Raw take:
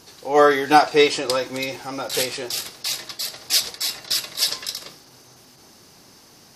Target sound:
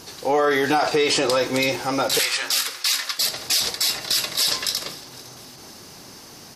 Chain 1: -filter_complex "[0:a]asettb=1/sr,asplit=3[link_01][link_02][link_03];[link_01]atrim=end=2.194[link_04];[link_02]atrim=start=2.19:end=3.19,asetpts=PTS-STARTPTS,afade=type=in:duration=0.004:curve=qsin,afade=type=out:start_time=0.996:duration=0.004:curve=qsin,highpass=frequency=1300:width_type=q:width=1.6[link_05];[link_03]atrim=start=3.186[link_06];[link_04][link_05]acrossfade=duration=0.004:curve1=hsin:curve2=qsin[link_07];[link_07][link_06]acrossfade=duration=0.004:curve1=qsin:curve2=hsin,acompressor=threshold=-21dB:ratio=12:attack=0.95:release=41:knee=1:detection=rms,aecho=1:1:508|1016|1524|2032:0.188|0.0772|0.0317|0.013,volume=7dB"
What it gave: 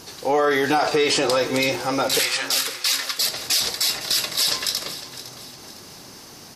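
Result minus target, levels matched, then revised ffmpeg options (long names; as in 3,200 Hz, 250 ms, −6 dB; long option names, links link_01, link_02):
echo-to-direct +7 dB
-filter_complex "[0:a]asettb=1/sr,asplit=3[link_01][link_02][link_03];[link_01]atrim=end=2.194[link_04];[link_02]atrim=start=2.19:end=3.19,asetpts=PTS-STARTPTS,afade=type=in:duration=0.004:curve=qsin,afade=type=out:start_time=0.996:duration=0.004:curve=qsin,highpass=frequency=1300:width_type=q:width=1.6[link_05];[link_03]atrim=start=3.186[link_06];[link_04][link_05]acrossfade=duration=0.004:curve1=hsin:curve2=qsin[link_07];[link_07][link_06]acrossfade=duration=0.004:curve1=qsin:curve2=hsin,acompressor=threshold=-21dB:ratio=12:attack=0.95:release=41:knee=1:detection=rms,aecho=1:1:508|1016|1524:0.0841|0.0345|0.0141,volume=7dB"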